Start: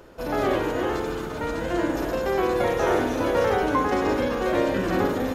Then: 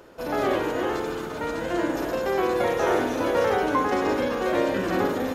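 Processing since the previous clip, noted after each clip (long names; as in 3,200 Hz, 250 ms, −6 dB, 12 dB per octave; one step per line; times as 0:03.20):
low-shelf EQ 99 Hz −11 dB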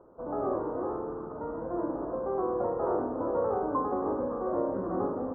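elliptic low-pass filter 1,200 Hz, stop band 60 dB
level −6 dB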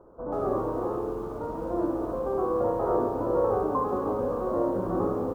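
low-shelf EQ 92 Hz +8 dB
multi-tap delay 63/91/161 ms −7/−8/−16.5 dB
feedback echo at a low word length 137 ms, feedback 35%, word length 8 bits, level −15 dB
level +1.5 dB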